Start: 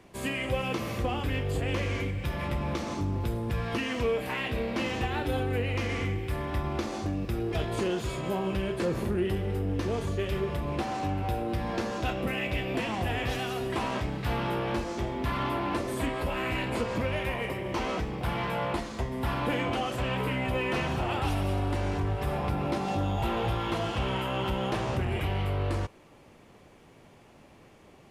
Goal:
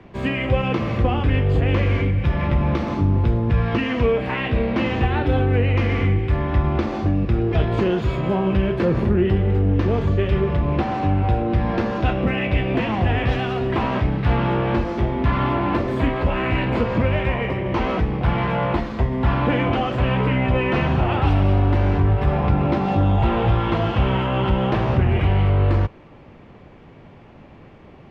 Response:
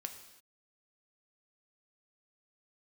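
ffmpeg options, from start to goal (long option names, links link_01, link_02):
-filter_complex "[0:a]bass=frequency=250:gain=5,treble=frequency=4000:gain=-13,acrossover=split=130|6700[link_01][link_02][link_03];[link_03]acrusher=samples=16:mix=1:aa=0.000001:lfo=1:lforange=9.6:lforate=0.31[link_04];[link_01][link_02][link_04]amix=inputs=3:normalize=0,volume=8dB"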